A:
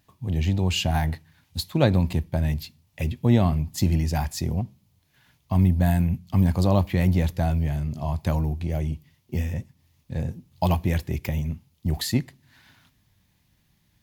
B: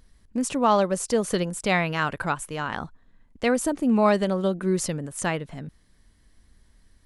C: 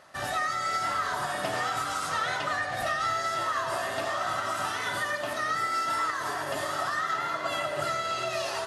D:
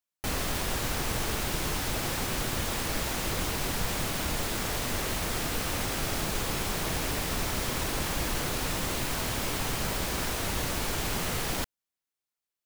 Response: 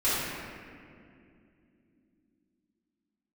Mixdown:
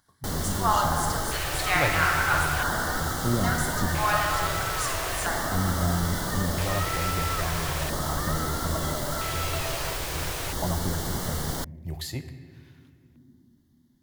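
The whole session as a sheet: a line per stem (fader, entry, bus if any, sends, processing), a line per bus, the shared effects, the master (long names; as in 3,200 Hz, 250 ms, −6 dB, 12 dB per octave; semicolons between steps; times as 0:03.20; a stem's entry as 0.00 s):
−7.5 dB, 0.00 s, send −21 dB, no processing
−5.5 dB, 0.00 s, send −8 dB, Chebyshev high-pass filter 760 Hz, order 4; parametric band 1,500 Hz +8 dB 0.23 octaves
−4.0 dB, 1.30 s, no send, no processing
0.0 dB, 0.00 s, no send, no processing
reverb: on, RT60 2.5 s, pre-delay 3 ms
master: auto-filter notch square 0.38 Hz 220–2,500 Hz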